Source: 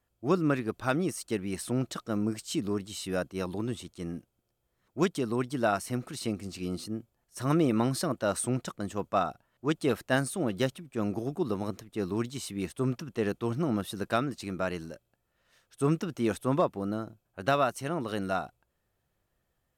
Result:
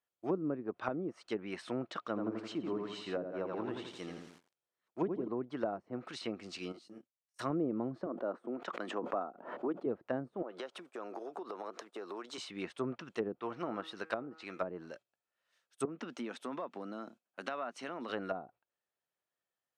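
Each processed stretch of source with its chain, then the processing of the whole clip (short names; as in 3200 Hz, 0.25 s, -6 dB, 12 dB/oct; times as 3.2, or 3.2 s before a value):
1.98–5.28 high shelf 9900 Hz -3.5 dB + lo-fi delay 84 ms, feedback 55%, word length 9-bit, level -4 dB
6.72–7.39 HPF 110 Hz + level quantiser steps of 19 dB + detuned doubles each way 44 cents
8.06–9.86 dynamic EQ 1300 Hz, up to +6 dB, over -42 dBFS, Q 1.6 + HPF 220 Hz 24 dB/oct + backwards sustainer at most 61 dB/s
10.42–12.38 HPF 210 Hz 24 dB/oct + band shelf 750 Hz +8.5 dB 2.4 oct + compressor 10:1, threshold -35 dBFS
13.39–14.61 low shelf 340 Hz -7 dB + de-hum 159.7 Hz, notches 17
15.85–18.1 HPF 160 Hz 24 dB/oct + compressor 5:1, threshold -34 dBFS + bell 240 Hz +8.5 dB 0.36 oct
whole clip: gate -50 dBFS, range -12 dB; weighting filter A; treble ducked by the level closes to 430 Hz, closed at -29.5 dBFS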